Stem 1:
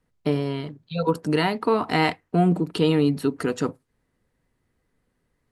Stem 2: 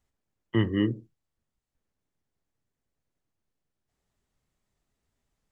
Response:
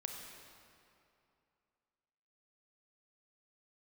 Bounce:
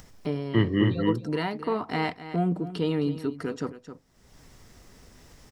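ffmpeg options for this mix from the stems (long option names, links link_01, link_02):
-filter_complex "[0:a]bass=frequency=250:gain=1,treble=frequency=4000:gain=-7,bandreject=frequency=2600:width=19,volume=-7dB,asplit=2[link_01][link_02];[link_02]volume=-14dB[link_03];[1:a]volume=2dB,asplit=2[link_04][link_05];[link_05]volume=-3.5dB[link_06];[link_03][link_06]amix=inputs=2:normalize=0,aecho=0:1:264:1[link_07];[link_01][link_04][link_07]amix=inputs=3:normalize=0,acompressor=mode=upward:threshold=-33dB:ratio=2.5,equalizer=frequency=5400:width=4.2:gain=8.5"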